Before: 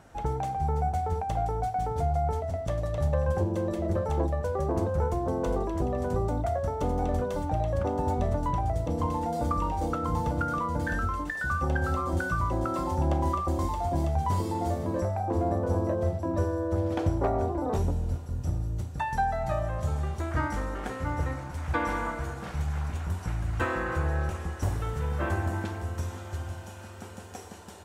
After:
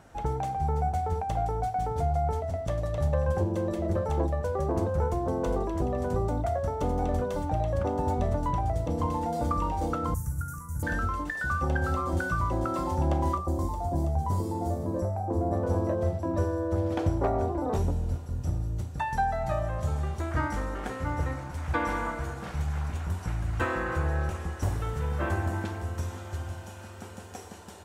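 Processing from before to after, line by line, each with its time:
0:10.14–0:10.83: drawn EQ curve 130 Hz 0 dB, 200 Hz −13 dB, 410 Hz −25 dB, 690 Hz −29 dB, 1,500 Hz −8 dB, 3,500 Hz −30 dB, 6,300 Hz +4 dB, 11,000 Hz +15 dB
0:13.37–0:15.53: parametric band 2,500 Hz −12.5 dB 1.9 octaves

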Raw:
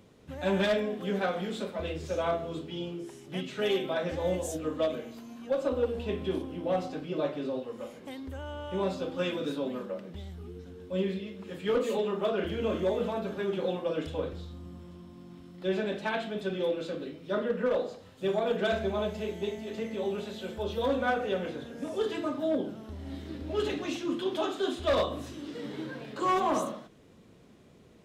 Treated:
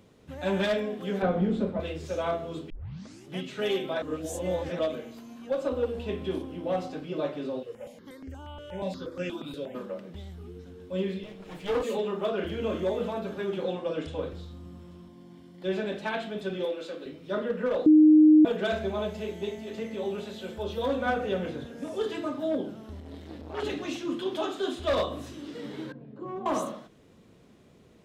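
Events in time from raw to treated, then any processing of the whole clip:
0:01.22–0:01.80: spectral tilt −4.5 dB per octave
0:02.70: tape start 0.56 s
0:04.02–0:04.79: reverse
0:07.63–0:09.75: step-sequenced phaser 8.4 Hz 240–3,700 Hz
0:11.23–0:11.83: lower of the sound and its delayed copy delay 6.4 ms
0:13.64–0:14.20: low-pass filter 9,800 Hz 24 dB per octave
0:15.08–0:15.64: notch comb filter 1,300 Hz
0:16.65–0:17.06: Bessel high-pass filter 380 Hz
0:17.86–0:18.45: beep over 308 Hz −12.5 dBFS
0:21.06–0:21.67: low-shelf EQ 170 Hz +9 dB
0:23.00–0:23.63: saturating transformer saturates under 1,100 Hz
0:25.92–0:26.46: resonant band-pass 160 Hz, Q 0.92

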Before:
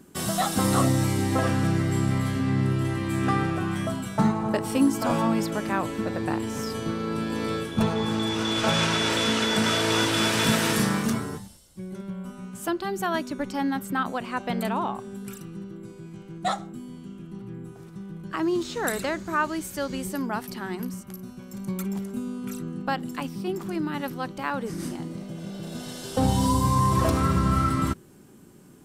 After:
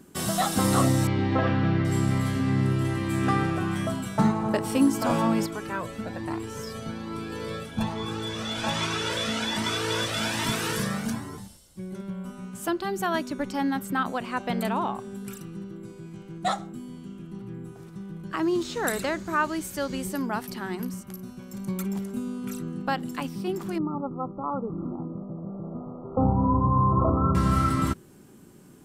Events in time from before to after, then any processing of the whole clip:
0:01.07–0:01.85: low-pass filter 3,800 Hz 24 dB per octave
0:05.46–0:11.38: flanger whose copies keep moving one way rising 1.2 Hz
0:23.78–0:27.35: linear-phase brick-wall low-pass 1,400 Hz

